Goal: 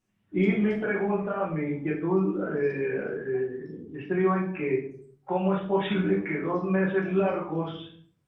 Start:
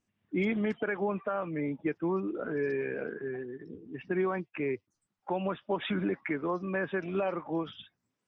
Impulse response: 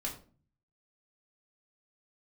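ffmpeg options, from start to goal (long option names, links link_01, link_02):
-filter_complex "[0:a]asplit=3[link_01][link_02][link_03];[link_01]afade=type=out:start_time=4.66:duration=0.02[link_04];[link_02]equalizer=frequency=290:width=4.2:gain=-2,afade=type=in:start_time=4.66:duration=0.02,afade=type=out:start_time=6.75:duration=0.02[link_05];[link_03]afade=type=in:start_time=6.75:duration=0.02[link_06];[link_04][link_05][link_06]amix=inputs=3:normalize=0[link_07];[1:a]atrim=start_sample=2205,afade=type=out:start_time=0.44:duration=0.01,atrim=end_sample=19845,asetrate=28665,aresample=44100[link_08];[link_07][link_08]afir=irnorm=-1:irlink=0" -ar 48000 -c:a libopus -b:a 48k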